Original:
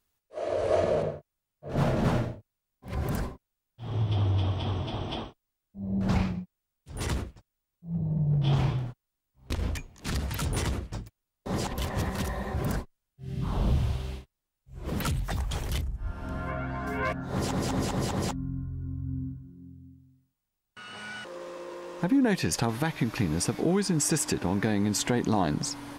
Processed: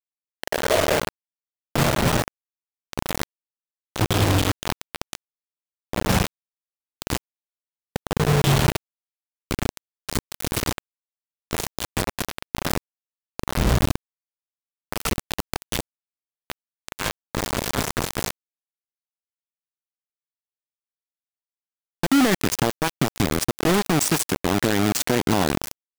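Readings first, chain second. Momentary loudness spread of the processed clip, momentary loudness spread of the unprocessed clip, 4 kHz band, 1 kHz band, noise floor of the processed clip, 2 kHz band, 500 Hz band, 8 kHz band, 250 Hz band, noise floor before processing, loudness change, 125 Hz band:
16 LU, 15 LU, +9.5 dB, +7.0 dB, below −85 dBFS, +9.0 dB, +5.0 dB, +6.5 dB, +4.0 dB, −85 dBFS, +6.0 dB, +2.0 dB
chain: bit reduction 4 bits
level +4 dB

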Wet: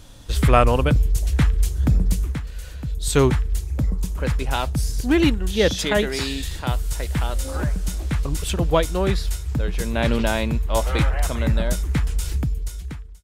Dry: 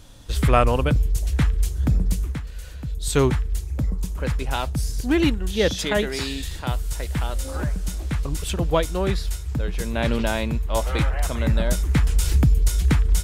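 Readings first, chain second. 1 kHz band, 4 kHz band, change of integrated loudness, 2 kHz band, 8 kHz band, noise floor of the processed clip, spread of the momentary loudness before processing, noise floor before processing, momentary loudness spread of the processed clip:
+2.0 dB, +1.5 dB, +1.0 dB, +1.5 dB, +0.5 dB, −34 dBFS, 8 LU, −34 dBFS, 8 LU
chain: fade-out on the ending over 2.09 s
level +2 dB

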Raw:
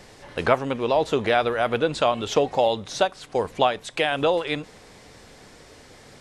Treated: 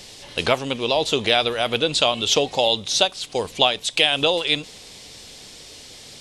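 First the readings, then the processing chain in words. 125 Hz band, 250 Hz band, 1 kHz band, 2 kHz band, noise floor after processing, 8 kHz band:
0.0 dB, 0.0 dB, −1.0 dB, +3.5 dB, −43 dBFS, +11.5 dB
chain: high shelf with overshoot 2,300 Hz +10.5 dB, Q 1.5

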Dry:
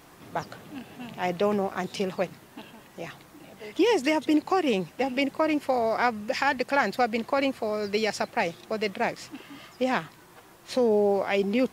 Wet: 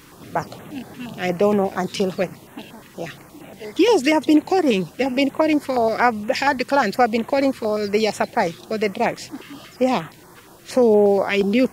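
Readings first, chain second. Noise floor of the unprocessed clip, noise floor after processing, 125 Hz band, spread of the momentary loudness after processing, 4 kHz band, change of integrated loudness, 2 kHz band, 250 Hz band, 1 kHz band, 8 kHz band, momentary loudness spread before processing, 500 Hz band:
−53 dBFS, −46 dBFS, +8.0 dB, 18 LU, +5.5 dB, +7.0 dB, +4.5 dB, +8.0 dB, +6.0 dB, +7.0 dB, 18 LU, +7.0 dB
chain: notch on a step sequencer 8.5 Hz 700–4,800 Hz
level +8 dB

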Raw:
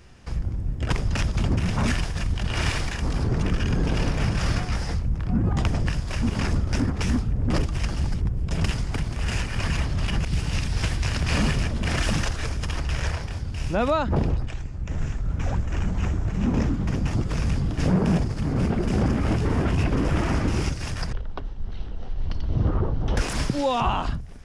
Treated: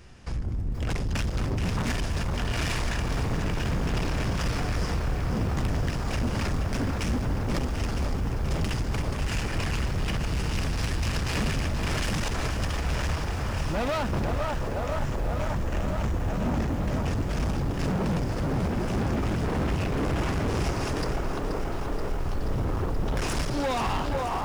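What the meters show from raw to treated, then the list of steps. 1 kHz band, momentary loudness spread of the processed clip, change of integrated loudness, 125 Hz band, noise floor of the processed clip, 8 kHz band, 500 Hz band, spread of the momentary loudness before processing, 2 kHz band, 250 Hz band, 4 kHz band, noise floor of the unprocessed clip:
−0.5 dB, 3 LU, −3.0 dB, −4.0 dB, −30 dBFS, −1.5 dB, −0.5 dB, 8 LU, −1.5 dB, −3.5 dB, −2.0 dB, −33 dBFS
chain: on a send: delay with a band-pass on its return 505 ms, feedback 80%, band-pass 700 Hz, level −5 dB
on the sum: hard clipping −25 dBFS, distortion −8 dB
feedback echo at a low word length 479 ms, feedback 80%, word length 8 bits, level −10 dB

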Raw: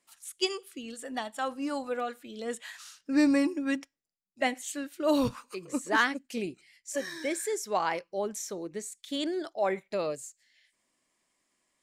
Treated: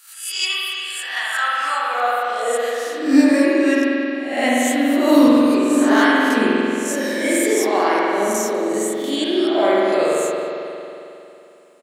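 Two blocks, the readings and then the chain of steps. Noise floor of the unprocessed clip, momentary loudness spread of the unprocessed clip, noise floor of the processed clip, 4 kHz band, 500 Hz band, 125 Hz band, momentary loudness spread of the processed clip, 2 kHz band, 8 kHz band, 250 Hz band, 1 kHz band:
−81 dBFS, 14 LU, −42 dBFS, +13.5 dB, +14.0 dB, can't be measured, 10 LU, +13.5 dB, +12.5 dB, +15.0 dB, +13.5 dB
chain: peak hold with a rise ahead of every peak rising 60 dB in 0.50 s
high-pass filter 160 Hz
high-shelf EQ 7,100 Hz +10.5 dB
in parallel at −1 dB: brickwall limiter −20.5 dBFS, peak gain reduction 10.5 dB
on the sum: high-pass filter sweep 1,600 Hz → 250 Hz, 0:01.32–0:03.23
on a send: single-tap delay 197 ms −22.5 dB
on the sum: spring reverb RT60 2.9 s, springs 45 ms, chirp 35 ms, DRR −6 dB
level −1 dB

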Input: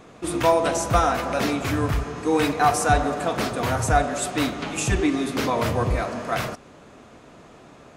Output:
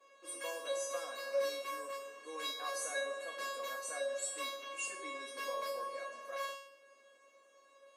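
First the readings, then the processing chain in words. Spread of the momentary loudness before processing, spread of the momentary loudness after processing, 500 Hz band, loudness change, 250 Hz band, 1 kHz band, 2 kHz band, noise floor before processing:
7 LU, 7 LU, −15.0 dB, −17.0 dB, −33.5 dB, −20.0 dB, −14.0 dB, −48 dBFS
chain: Butterworth high-pass 260 Hz 36 dB per octave
tuned comb filter 550 Hz, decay 0.6 s, mix 100%
level +7.5 dB

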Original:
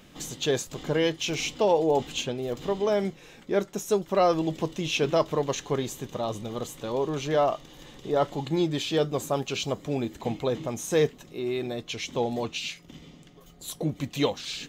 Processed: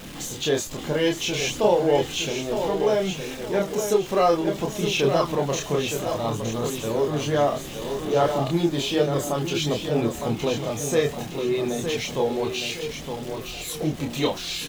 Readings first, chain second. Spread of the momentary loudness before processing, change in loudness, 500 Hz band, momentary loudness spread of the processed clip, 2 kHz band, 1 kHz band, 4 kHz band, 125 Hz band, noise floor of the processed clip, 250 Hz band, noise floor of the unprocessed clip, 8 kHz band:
10 LU, +3.5 dB, +3.5 dB, 8 LU, +4.5 dB, +3.5 dB, +4.5 dB, +4.5 dB, −36 dBFS, +4.0 dB, −52 dBFS, +5.5 dB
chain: converter with a step at zero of −37.5 dBFS
repeating echo 914 ms, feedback 37%, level −7 dB
multi-voice chorus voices 2, 0.3 Hz, delay 28 ms, depth 1.8 ms
level +5 dB

